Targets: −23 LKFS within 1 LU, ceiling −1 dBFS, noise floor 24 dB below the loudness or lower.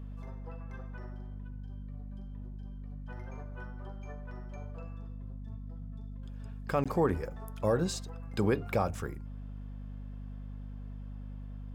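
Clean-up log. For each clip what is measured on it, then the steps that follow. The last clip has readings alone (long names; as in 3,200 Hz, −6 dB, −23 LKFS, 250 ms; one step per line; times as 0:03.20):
number of dropouts 1; longest dropout 16 ms; mains hum 50 Hz; hum harmonics up to 250 Hz; level of the hum −40 dBFS; integrated loudness −38.0 LKFS; sample peak −15.5 dBFS; target loudness −23.0 LKFS
→ repair the gap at 0:06.84, 16 ms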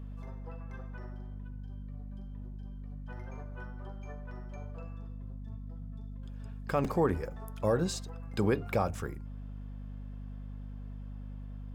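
number of dropouts 0; mains hum 50 Hz; hum harmonics up to 250 Hz; level of the hum −40 dBFS
→ hum removal 50 Hz, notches 5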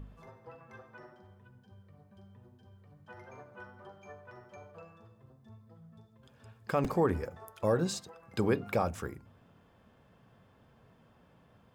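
mains hum none found; integrated loudness −33.0 LKFS; sample peak −16.0 dBFS; target loudness −23.0 LKFS
→ level +10 dB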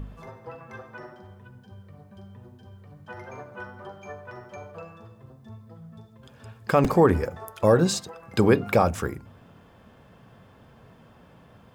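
integrated loudness −23.0 LKFS; sample peak −6.0 dBFS; background noise floor −53 dBFS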